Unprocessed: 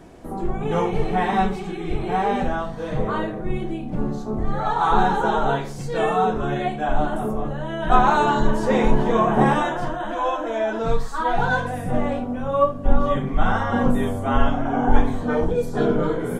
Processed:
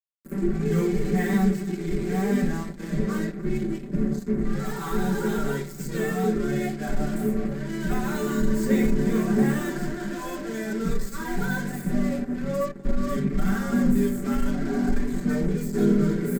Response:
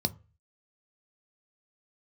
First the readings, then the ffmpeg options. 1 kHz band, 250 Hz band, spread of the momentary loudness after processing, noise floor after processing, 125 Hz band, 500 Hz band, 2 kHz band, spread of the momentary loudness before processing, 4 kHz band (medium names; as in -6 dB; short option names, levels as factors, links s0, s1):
-15.5 dB, +1.5 dB, 8 LU, -37 dBFS, -1.0 dB, -5.5 dB, -6.0 dB, 9 LU, -6.5 dB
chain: -filter_complex "[0:a]tiltshelf=f=1400:g=-7.5,alimiter=limit=0.237:level=0:latency=1:release=224,acrusher=bits=4:mix=0:aa=0.5,equalizer=f=3900:w=0.36:g=-13,asoftclip=type=tanh:threshold=0.112,aecho=1:1:5.1:0.68,aecho=1:1:293:0.0944,asplit=2[s0][s1];[1:a]atrim=start_sample=2205,asetrate=83790,aresample=44100[s2];[s1][s2]afir=irnorm=-1:irlink=0,volume=0.668[s3];[s0][s3]amix=inputs=2:normalize=0"